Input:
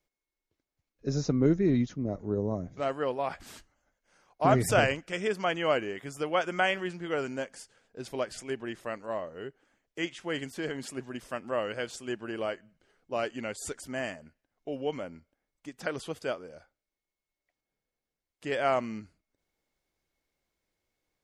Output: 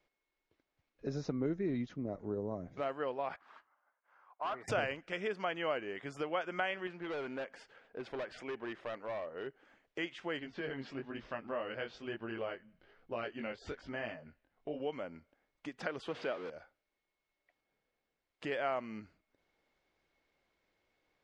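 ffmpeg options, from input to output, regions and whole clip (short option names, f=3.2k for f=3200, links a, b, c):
-filter_complex "[0:a]asettb=1/sr,asplit=3[a][b][c];[a]atrim=end=3.364[d];[b]atrim=start=3.36:end=4.68,asetpts=PTS-STARTPTS,afade=t=in:d=0.004:c=qsin,afade=t=out:st=1.316:d=0.004:c=qsin,bandpass=f=1.1k:t=q:w=2.9,asoftclip=type=hard:threshold=-28.5dB[e];[c]atrim=start=4.676[f];[d][e]acrossfade=d=0.004:c1=hsin:c2=qsin[g];[g][f]acrossfade=d=0.004:c1=qsin:c2=hsin,asettb=1/sr,asplit=3[h][i][j];[h]atrim=end=6.874[k];[i]atrim=start=6.87:end=9.47,asetpts=PTS-STARTPTS,afade=t=in:d=0.004:c=qsin,afade=t=out:st=2.596:d=0.004:c=qsin,bass=f=250:g=-5,treble=f=4k:g=-10,volume=34dB,asoftclip=hard,volume=-34dB[l];[j]atrim=start=9.466[m];[k][l]acrossfade=d=0.004:c1=hsin:c2=qsin[n];[n][m]acrossfade=d=0.004:c1=qsin:c2=hsin,asettb=1/sr,asplit=3[o][p][q];[o]atrim=end=10.394[r];[p]atrim=start=10.39:end=14.8,asetpts=PTS-STARTPTS,afade=t=in:d=0.004:c=qsin,afade=t=out:st=4.406:d=0.004:c=qsin,lowpass=f=5.2k:w=0.5412,lowpass=f=5.2k:w=1.3066,flanger=delay=17.5:depth=5.3:speed=1.1,lowshelf=f=110:g=10[s];[q]atrim=start=14.796[t];[r][s]acrossfade=d=0.004:c1=hsin:c2=qsin[u];[u][t]acrossfade=d=0.004:c1=qsin:c2=hsin,asettb=1/sr,asplit=3[v][w][x];[v]atrim=end=16.084[y];[w]atrim=start=16.08:end=16.5,asetpts=PTS-STARTPTS,afade=t=in:d=0.004:c=qsin,afade=t=out:st=0.416:d=0.004:c=qsin,aeval=exprs='val(0)+0.5*0.0158*sgn(val(0))':c=same,highpass=150,lowpass=4.7k[z];[x]atrim=start=16.496[aa];[y][z]acrossfade=d=0.004:c1=hsin:c2=qsin[ab];[ab][aa]acrossfade=d=0.004:c1=qsin:c2=hsin,lowpass=3.4k,lowshelf=f=230:g=-8.5,acompressor=threshold=-51dB:ratio=2,volume=7dB"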